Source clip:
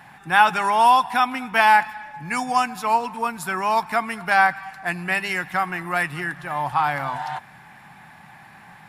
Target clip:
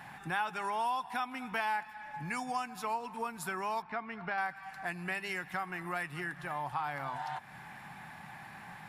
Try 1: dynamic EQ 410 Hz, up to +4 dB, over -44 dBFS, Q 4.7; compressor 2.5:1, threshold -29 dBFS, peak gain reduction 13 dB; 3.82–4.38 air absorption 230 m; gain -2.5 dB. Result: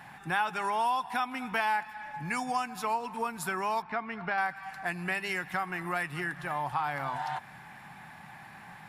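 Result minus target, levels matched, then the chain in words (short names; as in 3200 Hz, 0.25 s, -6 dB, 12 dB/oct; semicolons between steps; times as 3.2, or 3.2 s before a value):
compressor: peak gain reduction -4.5 dB
dynamic EQ 410 Hz, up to +4 dB, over -44 dBFS, Q 4.7; compressor 2.5:1, threshold -36.5 dBFS, peak gain reduction 17.5 dB; 3.82–4.38 air absorption 230 m; gain -2.5 dB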